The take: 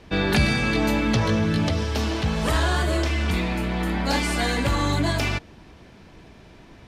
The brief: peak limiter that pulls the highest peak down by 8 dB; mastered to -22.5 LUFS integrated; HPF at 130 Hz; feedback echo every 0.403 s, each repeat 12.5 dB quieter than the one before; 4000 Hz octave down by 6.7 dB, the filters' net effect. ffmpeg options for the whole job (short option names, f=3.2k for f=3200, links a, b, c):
-af "highpass=130,equalizer=f=4k:t=o:g=-8.5,alimiter=limit=-18.5dB:level=0:latency=1,aecho=1:1:403|806|1209:0.237|0.0569|0.0137,volume=5dB"